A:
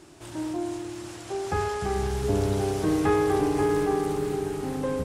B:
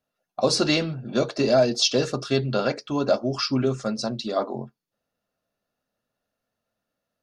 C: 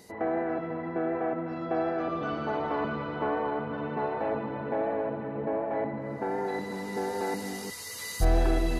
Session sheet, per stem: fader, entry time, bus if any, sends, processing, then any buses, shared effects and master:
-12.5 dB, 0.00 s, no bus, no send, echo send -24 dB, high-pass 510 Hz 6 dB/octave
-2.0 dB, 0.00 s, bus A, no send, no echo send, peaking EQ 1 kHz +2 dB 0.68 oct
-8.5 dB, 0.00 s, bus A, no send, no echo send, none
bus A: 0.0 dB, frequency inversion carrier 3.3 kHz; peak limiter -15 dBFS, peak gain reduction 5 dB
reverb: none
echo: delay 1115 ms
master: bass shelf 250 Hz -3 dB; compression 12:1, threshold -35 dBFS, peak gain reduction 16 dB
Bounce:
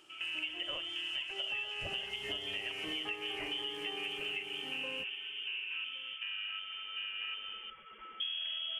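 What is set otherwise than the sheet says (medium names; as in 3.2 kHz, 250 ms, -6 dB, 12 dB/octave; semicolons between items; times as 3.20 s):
stem B -2.0 dB -> -10.0 dB; master: missing bass shelf 250 Hz -3 dB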